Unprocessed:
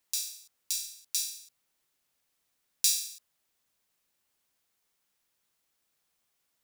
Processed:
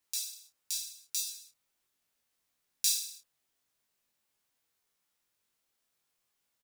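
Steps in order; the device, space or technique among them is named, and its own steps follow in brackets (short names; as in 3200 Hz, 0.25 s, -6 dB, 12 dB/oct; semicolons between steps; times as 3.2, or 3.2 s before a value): double-tracked vocal (doubler 29 ms -9 dB; chorus 0.42 Hz, delay 16.5 ms, depth 5.4 ms)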